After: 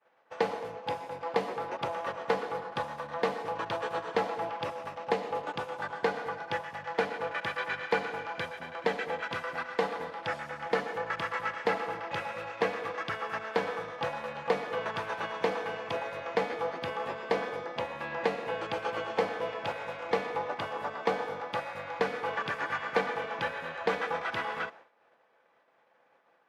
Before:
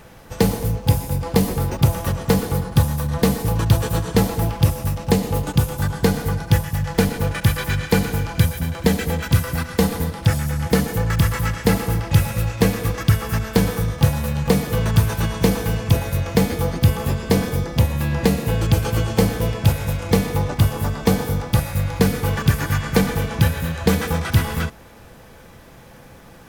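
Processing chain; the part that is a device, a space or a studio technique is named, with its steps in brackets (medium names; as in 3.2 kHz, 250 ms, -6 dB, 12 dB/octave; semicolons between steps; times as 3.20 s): hearing-loss simulation (low-pass 2.4 kHz 12 dB/octave; expander -34 dBFS); Chebyshev high-pass 640 Hz, order 2; trim -3.5 dB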